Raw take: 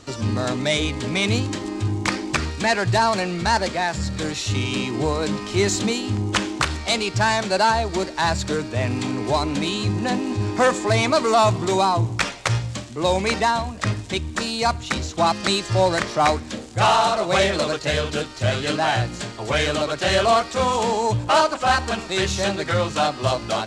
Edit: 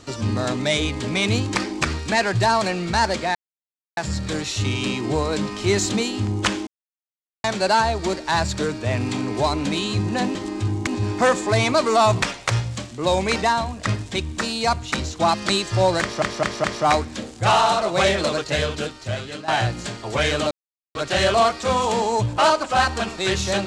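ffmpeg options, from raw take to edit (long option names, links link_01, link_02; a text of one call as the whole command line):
ffmpeg -i in.wav -filter_complex "[0:a]asplit=13[link_01][link_02][link_03][link_04][link_05][link_06][link_07][link_08][link_09][link_10][link_11][link_12][link_13];[link_01]atrim=end=1.552[link_14];[link_02]atrim=start=2.068:end=3.87,asetpts=PTS-STARTPTS,afade=type=out:start_time=1.798:duration=0.004:curve=hsin,apad=pad_dur=0.62[link_15];[link_03]atrim=start=3.87:end=6.57,asetpts=PTS-STARTPTS,afade=type=in:duration=0.004:curve=hsin,afade=type=out:start_time=2.696:duration=0.004:curve=hsin[link_16];[link_04]atrim=start=6.57:end=7.34,asetpts=PTS-STARTPTS,volume=0[link_17];[link_05]atrim=start=7.34:end=10.252,asetpts=PTS-STARTPTS,afade=type=in:duration=0.004:curve=hsin[link_18];[link_06]atrim=start=1.548:end=2.072[link_19];[link_07]atrim=start=10.248:end=11.602[link_20];[link_08]atrim=start=12.198:end=16.202[link_21];[link_09]atrim=start=15.988:end=16.202[link_22];[link_10]atrim=start=15.988:end=16.202[link_23];[link_11]atrim=start=15.988:end=18.83,asetpts=PTS-STARTPTS,afade=type=out:start_time=1.942:duration=0.9:silence=0.199526[link_24];[link_12]atrim=start=18.83:end=19.86,asetpts=PTS-STARTPTS,afade=type=in:duration=0.004:curve=hsin:silence=0.199526,afade=type=out:start_time=1.026:duration=0.004:curve=hsin,apad=pad_dur=0.44[link_25];[link_13]atrim=start=19.86,asetpts=PTS-STARTPTS,afade=type=in:duration=0.004:curve=hsin[link_26];[link_15][link_16][link_17][link_18]concat=n=4:v=0:a=1[link_27];[link_14][link_27]acrossfade=duration=0.004:curve1=hsin:curve2=hsin[link_28];[link_28][link_19]acrossfade=duration=0.004:curve1=hsin:curve2=hsin[link_29];[link_29][link_20]acrossfade=duration=0.004:curve1=hsin:curve2=hsin[link_30];[link_30][link_21]acrossfade=duration=0.004:curve1=hsin:curve2=hsin[link_31];[link_31][link_22]acrossfade=duration=0.004:curve1=hsin:curve2=hsin[link_32];[link_32][link_23]acrossfade=duration=0.004:curve1=hsin:curve2=hsin[link_33];[link_24][link_25][link_26]concat=n=3:v=0:a=1[link_34];[link_33][link_34]acrossfade=duration=0.004:curve1=hsin:curve2=hsin" out.wav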